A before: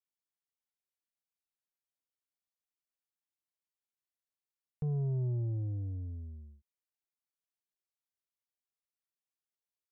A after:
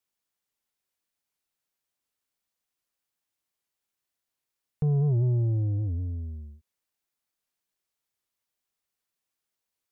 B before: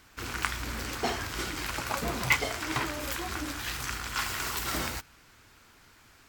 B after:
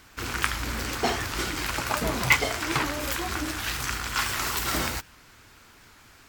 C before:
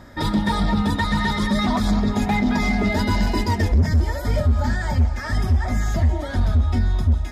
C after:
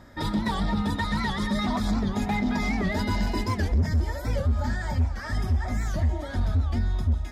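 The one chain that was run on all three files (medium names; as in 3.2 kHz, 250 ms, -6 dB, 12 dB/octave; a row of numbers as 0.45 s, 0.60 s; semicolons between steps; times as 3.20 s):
warped record 78 rpm, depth 160 cents; normalise loudness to -27 LUFS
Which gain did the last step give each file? +9.0 dB, +4.5 dB, -6.0 dB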